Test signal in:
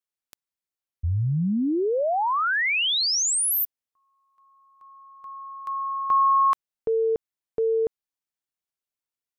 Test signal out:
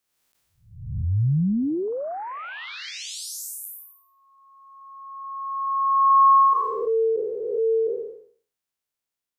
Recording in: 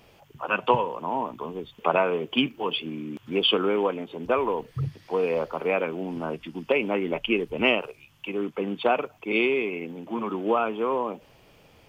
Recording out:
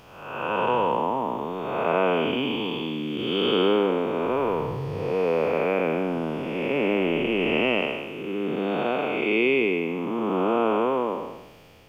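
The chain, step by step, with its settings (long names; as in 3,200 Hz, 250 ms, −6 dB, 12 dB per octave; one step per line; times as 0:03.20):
spectrum smeared in time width 415 ms
level +6.5 dB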